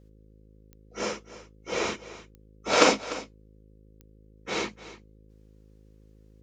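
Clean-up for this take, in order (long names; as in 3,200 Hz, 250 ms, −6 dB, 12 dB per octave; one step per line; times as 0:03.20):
click removal
hum removal 53 Hz, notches 10
echo removal 297 ms −16 dB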